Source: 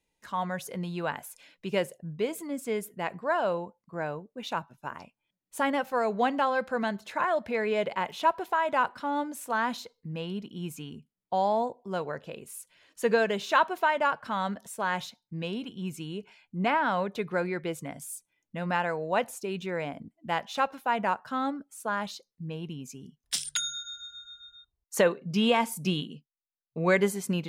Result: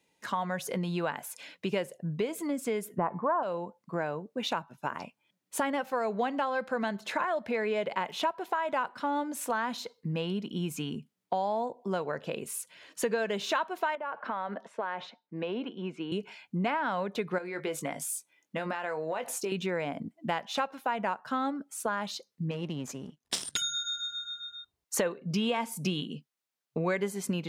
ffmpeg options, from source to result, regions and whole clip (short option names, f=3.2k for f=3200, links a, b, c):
-filter_complex "[0:a]asettb=1/sr,asplit=3[a][b][c];[a]atrim=end=2.984[d];[b]atrim=start=2.98:end=3.43,asetpts=PTS-STARTPTS,afade=t=in:d=0.004:c=qsin,afade=t=out:st=0.446:d=0.004:c=qsin,lowpass=f=1.1k:t=q:w=3.8,lowshelf=f=350:g=11.5,bandreject=f=434.8:t=h:w=4,bandreject=f=869.6:t=h:w=4,bandreject=f=1.3044k:t=h:w=4,bandreject=f=1.7392k:t=h:w=4,bandreject=f=2.174k:t=h:w=4,bandreject=f=2.6088k:t=h:w=4,bandreject=f=3.0436k:t=h:w=4,bandreject=f=3.4784k:t=h:w=4,bandreject=f=3.9132k:t=h:w=4,bandreject=f=4.348k:t=h:w=4,bandreject=f=4.7828k:t=h:w=4,bandreject=f=5.2176k:t=h:w=4,bandreject=f=5.6524k:t=h:w=4,bandreject=f=6.0872k:t=h:w=4,bandreject=f=6.522k:t=h:w=4,bandreject=f=6.9568k:t=h:w=4,bandreject=f=7.3916k:t=h:w=4,bandreject=f=7.8264k:t=h:w=4,bandreject=f=8.2612k:t=h:w=4,bandreject=f=8.696k:t=h:w=4,bandreject=f=9.1308k:t=h:w=4,bandreject=f=9.5656k:t=h:w=4,bandreject=f=10.0004k:t=h:w=4,bandreject=f=10.4352k:t=h:w=4,bandreject=f=10.87k:t=h:w=4,bandreject=f=11.3048k:t=h:w=4,bandreject=f=11.7396k:t=h:w=4,bandreject=f=12.1744k:t=h:w=4,bandreject=f=12.6092k:t=h:w=4,bandreject=f=13.044k:t=h:w=4,bandreject=f=13.4788k:t=h:w=4,bandreject=f=13.9136k:t=h:w=4,bandreject=f=14.3484k:t=h:w=4,bandreject=f=14.7832k:t=h:w=4,bandreject=f=15.218k:t=h:w=4[e];[c]atrim=start=3.426[f];[d][e]acrossfade=d=0.004:c1=hsin:c2=qsin[g];[g][f]acrossfade=d=0.004:c1=qsin:c2=hsin,asettb=1/sr,asplit=3[h][i][j];[h]atrim=end=13.954[k];[i]atrim=start=13.95:end=16.12,asetpts=PTS-STARTPTS,afade=t=in:d=0.004:c=qsin,afade=t=out:st=2.166:d=0.004:c=qsin,highpass=400,lowpass=2.3k,tiltshelf=f=670:g=3,acompressor=threshold=-36dB:ratio=3:attack=3.2:release=140:knee=1:detection=peak[l];[j]atrim=start=16.116[m];[k][l]acrossfade=d=0.004:c1=hsin:c2=qsin[n];[n][m]acrossfade=d=0.004:c1=qsin:c2=hsin,asettb=1/sr,asplit=3[o][p][q];[o]atrim=end=17.384[r];[p]atrim=start=17.38:end=19.52,asetpts=PTS-STARTPTS,afade=t=in:d=0.004:c=qsin,afade=t=out:st=2.136:d=0.004:c=qsin,bass=f=250:g=-9,treble=f=4k:g=0,acompressor=threshold=-34dB:ratio=10:attack=3.2:release=140:knee=1:detection=peak,asplit=2[s][t];[t]adelay=20,volume=-9dB[u];[s][u]amix=inputs=2:normalize=0,atrim=end_sample=94374[v];[q]atrim=start=19.516[w];[r][v]acrossfade=d=0.004:c1=hsin:c2=qsin[x];[x][w]acrossfade=d=0.004:c1=qsin:c2=hsin,asettb=1/sr,asplit=3[y][z][aa];[y]atrim=end=22.514[ab];[z]atrim=start=22.51:end=23.62,asetpts=PTS-STARTPTS,afade=t=in:d=0.004:c=qsin,afade=t=out:st=1.106:d=0.004:c=qsin,aeval=exprs='if(lt(val(0),0),0.251*val(0),val(0))':c=same,lowpass=12k[ac];[aa]atrim=start=23.616[ad];[ab][ac]acrossfade=d=0.004:c1=hsin:c2=qsin[ae];[ae][ad]acrossfade=d=0.004:c1=qsin:c2=hsin,highpass=140,highshelf=f=8.9k:g=-5,acompressor=threshold=-38dB:ratio=4,volume=8.5dB"